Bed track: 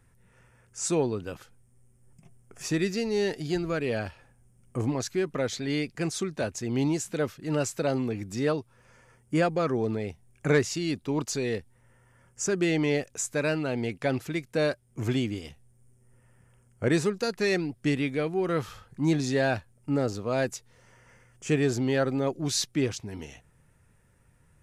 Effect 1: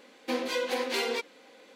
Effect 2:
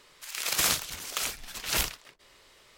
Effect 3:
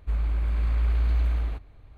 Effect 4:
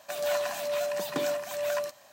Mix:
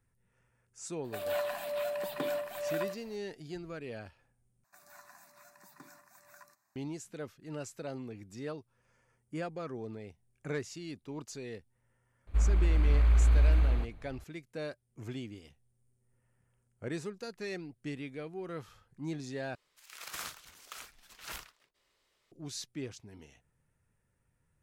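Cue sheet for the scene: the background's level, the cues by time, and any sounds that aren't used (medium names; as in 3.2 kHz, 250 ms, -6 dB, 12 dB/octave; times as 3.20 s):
bed track -13.5 dB
1.04 s: add 4 -4.5 dB + peaking EQ 6.1 kHz -13.5 dB 0.65 oct
4.64 s: replace with 4 -18 dB + static phaser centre 1.3 kHz, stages 4
12.27 s: add 3
19.55 s: replace with 2 -18 dB + dynamic bell 1.3 kHz, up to +8 dB, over -47 dBFS, Q 1
not used: 1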